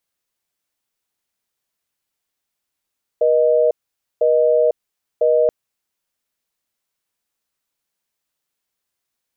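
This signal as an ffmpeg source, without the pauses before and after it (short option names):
-f lavfi -i "aevalsrc='0.188*(sin(2*PI*480*t)+sin(2*PI*620*t))*clip(min(mod(t,1),0.5-mod(t,1))/0.005,0,1)':d=2.28:s=44100"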